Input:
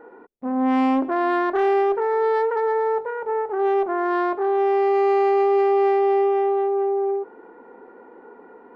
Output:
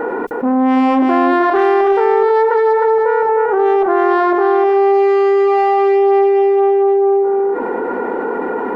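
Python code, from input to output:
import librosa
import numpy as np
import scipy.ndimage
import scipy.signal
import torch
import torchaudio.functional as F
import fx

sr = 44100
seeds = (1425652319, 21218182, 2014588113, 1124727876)

p1 = x + fx.echo_single(x, sr, ms=309, db=-4.5, dry=0)
p2 = fx.env_flatten(p1, sr, amount_pct=70)
y = F.gain(torch.from_numpy(p2), 3.0).numpy()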